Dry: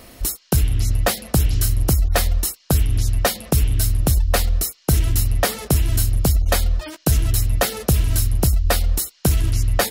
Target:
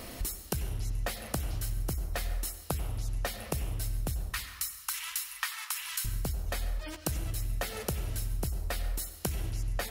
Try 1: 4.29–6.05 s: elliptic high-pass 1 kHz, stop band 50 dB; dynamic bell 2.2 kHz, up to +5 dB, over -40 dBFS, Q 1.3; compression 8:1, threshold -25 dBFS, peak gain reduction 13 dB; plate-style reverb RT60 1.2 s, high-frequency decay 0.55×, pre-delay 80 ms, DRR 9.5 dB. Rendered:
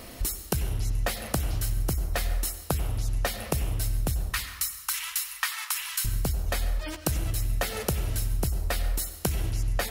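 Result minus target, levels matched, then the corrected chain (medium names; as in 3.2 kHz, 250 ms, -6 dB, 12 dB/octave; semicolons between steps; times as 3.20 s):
compression: peak gain reduction -5.5 dB
4.29–6.05 s: elliptic high-pass 1 kHz, stop band 50 dB; dynamic bell 2.2 kHz, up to +5 dB, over -40 dBFS, Q 1.3; compression 8:1, threshold -31.5 dBFS, peak gain reduction 19 dB; plate-style reverb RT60 1.2 s, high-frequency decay 0.55×, pre-delay 80 ms, DRR 9.5 dB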